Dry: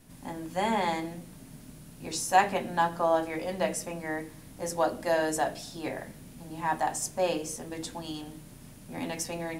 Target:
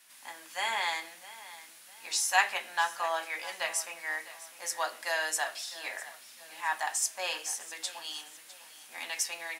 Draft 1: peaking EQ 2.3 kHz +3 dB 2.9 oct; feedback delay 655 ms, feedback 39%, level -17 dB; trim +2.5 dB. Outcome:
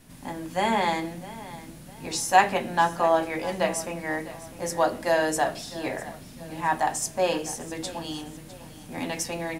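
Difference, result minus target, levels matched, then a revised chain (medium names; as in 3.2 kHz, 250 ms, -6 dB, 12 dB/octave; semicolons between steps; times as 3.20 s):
1 kHz band +3.5 dB
high-pass 1.4 kHz 12 dB/octave; peaking EQ 2.3 kHz +3 dB 2.9 oct; feedback delay 655 ms, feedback 39%, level -17 dB; trim +2.5 dB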